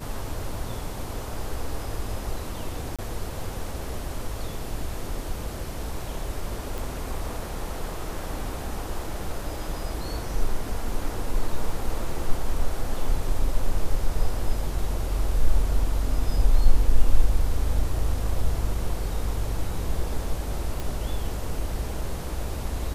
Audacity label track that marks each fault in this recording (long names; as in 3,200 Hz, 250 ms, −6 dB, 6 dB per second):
2.960000	2.990000	drop-out 26 ms
6.780000	6.780000	click
20.800000	20.800000	click